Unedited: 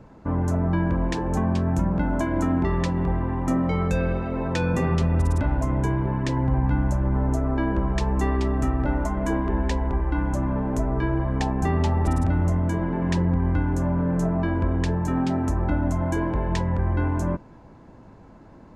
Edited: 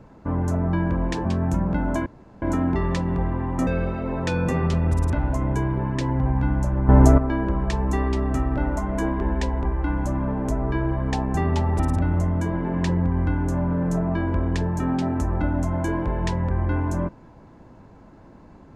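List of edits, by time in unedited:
1.25–1.5 cut
2.31 insert room tone 0.36 s
3.56–3.95 cut
7.17–7.46 gain +10.5 dB

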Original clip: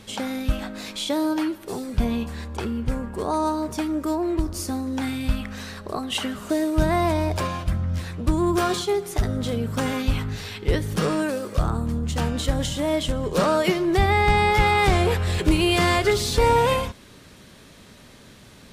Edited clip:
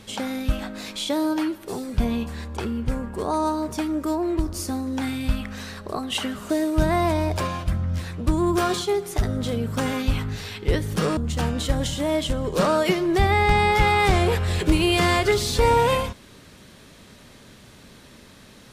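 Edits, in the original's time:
11.17–11.96 cut

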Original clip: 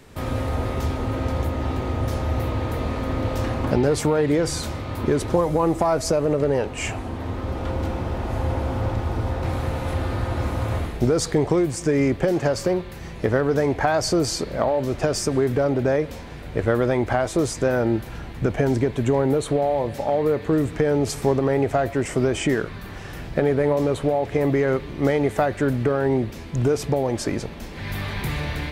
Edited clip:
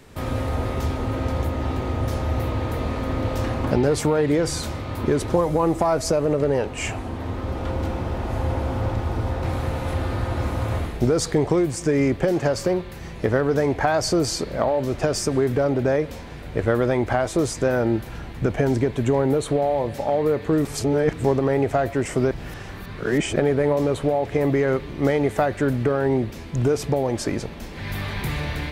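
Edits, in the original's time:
20.65–21.24 reverse
22.31–23.36 reverse

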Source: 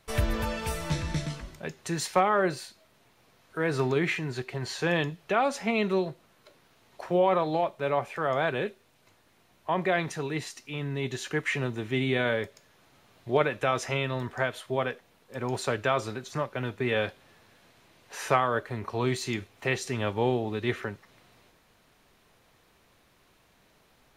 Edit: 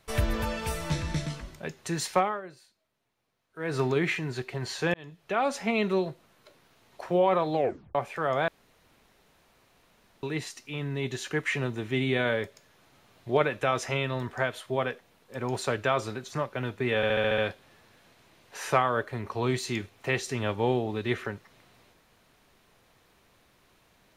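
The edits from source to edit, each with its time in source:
2.16–3.78 dip -17 dB, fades 0.25 s
4.94–5.5 fade in linear
7.55 tape stop 0.40 s
8.48–10.23 room tone
16.96 stutter 0.07 s, 7 plays

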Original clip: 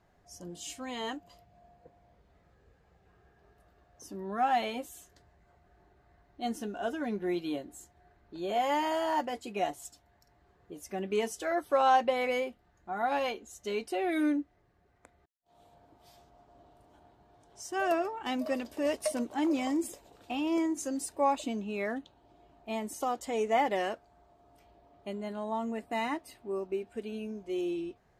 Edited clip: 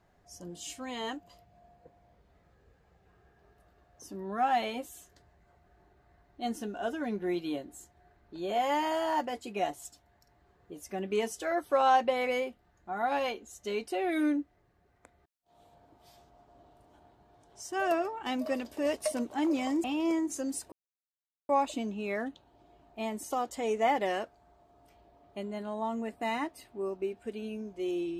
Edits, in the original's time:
19.84–20.31 cut
21.19 insert silence 0.77 s

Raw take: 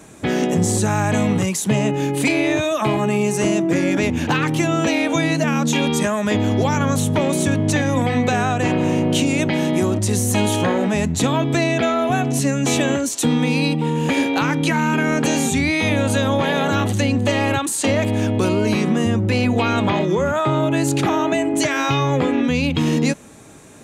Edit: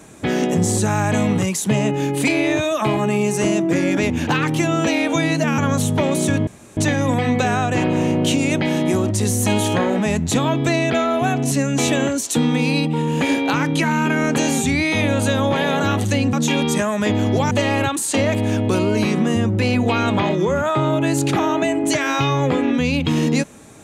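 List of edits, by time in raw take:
5.58–6.76 move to 17.21
7.65 insert room tone 0.30 s

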